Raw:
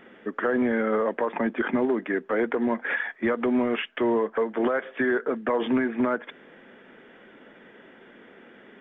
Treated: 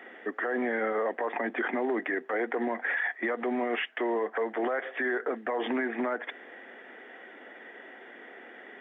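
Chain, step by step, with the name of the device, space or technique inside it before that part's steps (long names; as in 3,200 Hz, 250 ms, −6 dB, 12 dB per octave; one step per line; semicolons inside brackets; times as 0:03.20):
laptop speaker (high-pass filter 270 Hz 24 dB per octave; parametric band 740 Hz +9.5 dB 0.27 octaves; parametric band 1,900 Hz +9.5 dB 0.28 octaves; brickwall limiter −21.5 dBFS, peak gain reduction 10 dB)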